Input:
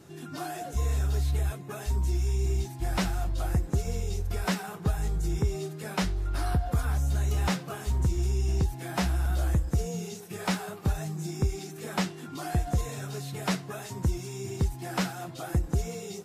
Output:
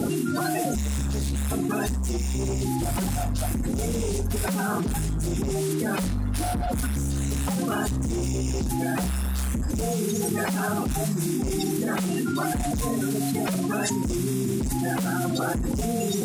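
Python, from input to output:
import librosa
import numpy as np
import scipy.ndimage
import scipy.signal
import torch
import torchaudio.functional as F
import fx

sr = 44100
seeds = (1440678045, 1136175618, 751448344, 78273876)

y = fx.spec_quant(x, sr, step_db=30)
y = fx.peak_eq(y, sr, hz=9800.0, db=7.0, octaves=0.94)
y = fx.room_flutter(y, sr, wall_m=9.3, rt60_s=0.26)
y = np.clip(y, -10.0 ** (-29.0 / 20.0), 10.0 ** (-29.0 / 20.0))
y = fx.peak_eq(y, sr, hz=240.0, db=11.5, octaves=0.57)
y = fx.env_flatten(y, sr, amount_pct=100)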